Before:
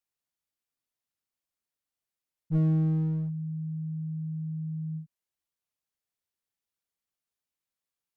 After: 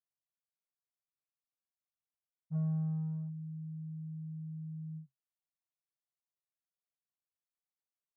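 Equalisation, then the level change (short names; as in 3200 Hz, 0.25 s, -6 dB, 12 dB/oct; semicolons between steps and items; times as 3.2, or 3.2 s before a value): double band-pass 330 Hz, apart 2.6 oct; fixed phaser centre 560 Hz, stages 8; +5.5 dB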